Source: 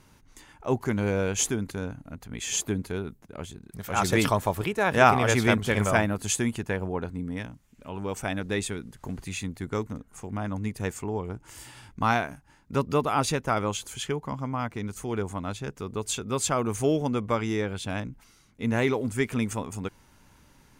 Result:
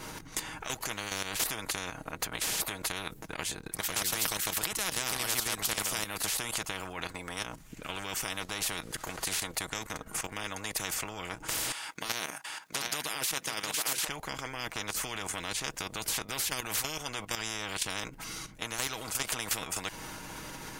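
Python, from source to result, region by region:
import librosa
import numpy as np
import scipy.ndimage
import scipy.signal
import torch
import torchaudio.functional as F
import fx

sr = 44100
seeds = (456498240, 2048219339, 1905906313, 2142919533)

y = fx.chain(x, sr, fx.highpass(hz=830.0, slope=12),
    fx.echo_single(ms=720, db=-9.5), at=(11.72, 14.08))
y = y + 0.45 * np.pad(y, (int(6.3 * sr / 1000.0), 0))[:len(y)]
y = fx.level_steps(y, sr, step_db=12)
y = fx.spectral_comp(y, sr, ratio=10.0)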